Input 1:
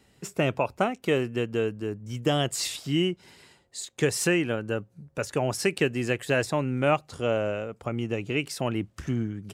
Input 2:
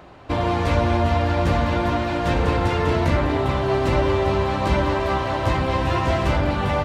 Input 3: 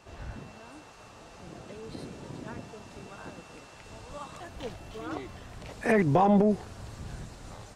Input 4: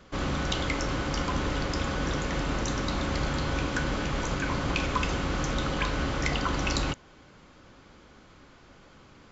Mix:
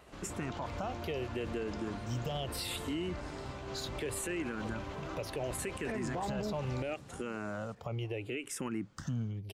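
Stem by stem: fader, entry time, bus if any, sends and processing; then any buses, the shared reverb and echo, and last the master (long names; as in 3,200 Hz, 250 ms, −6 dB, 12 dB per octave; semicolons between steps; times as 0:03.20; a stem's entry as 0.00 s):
0.0 dB, 0.00 s, no send, no echo send, downward compressor, threshold −27 dBFS, peak gain reduction 9.5 dB; frequency shifter mixed with the dry sound −0.72 Hz
−15.0 dB, 0.00 s, no send, no echo send, automatic ducking −8 dB, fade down 0.25 s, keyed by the first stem
−10.0 dB, 0.00 s, no send, echo send −22.5 dB, high-pass filter 120 Hz
−17.5 dB, 0.00 s, no send, no echo send, compressor whose output falls as the input rises −31 dBFS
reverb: not used
echo: repeating echo 941 ms, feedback 39%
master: brickwall limiter −28 dBFS, peak gain reduction 9.5 dB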